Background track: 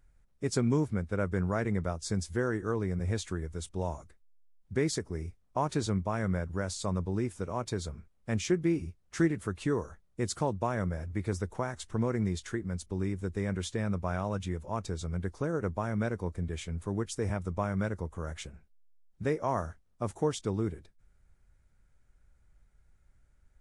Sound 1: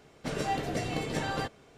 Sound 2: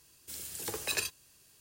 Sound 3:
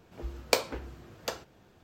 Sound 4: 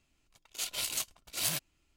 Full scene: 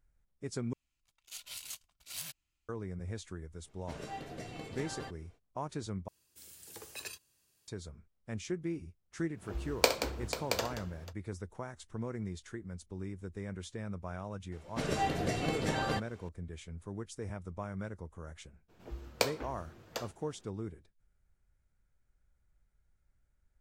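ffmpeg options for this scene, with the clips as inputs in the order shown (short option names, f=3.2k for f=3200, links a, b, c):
-filter_complex "[1:a]asplit=2[a][b];[3:a]asplit=2[c][d];[0:a]volume=-9dB[e];[4:a]equalizer=f=390:w=0.61:g=-10[f];[c]aecho=1:1:65|178|490|674:0.251|0.282|0.251|0.398[g];[e]asplit=3[h][i][j];[h]atrim=end=0.734[k];[f]atrim=end=1.96,asetpts=PTS-STARTPTS,volume=-10dB[l];[i]atrim=start=2.686:end=6.084[m];[2:a]atrim=end=1.6,asetpts=PTS-STARTPTS,volume=-11.5dB[n];[j]atrim=start=7.676[o];[a]atrim=end=1.77,asetpts=PTS-STARTPTS,volume=-12dB,afade=t=in:d=0.05,afade=t=out:st=1.72:d=0.05,adelay=3630[p];[g]atrim=end=1.83,asetpts=PTS-STARTPTS,volume=-1dB,afade=t=in:d=0.1,afade=t=out:st=1.73:d=0.1,adelay=9310[q];[b]atrim=end=1.77,asetpts=PTS-STARTPTS,volume=-1dB,afade=t=in:d=0.004:c=hsin,afade=t=out:st=1.766:d=0.004:c=hsin,adelay=14520[r];[d]atrim=end=1.83,asetpts=PTS-STARTPTS,volume=-5dB,afade=t=in:d=0.02,afade=t=out:st=1.81:d=0.02,adelay=18680[s];[k][l]acrossfade=d=0.004:c1=hsin:c2=hsin[t];[t][m]acrossfade=d=0.004:c1=hsin:c2=hsin[u];[u][n]acrossfade=d=0.004:c1=hsin:c2=hsin[v];[v][o]acrossfade=d=0.004:c1=hsin:c2=hsin[w];[w][p][q][r][s]amix=inputs=5:normalize=0"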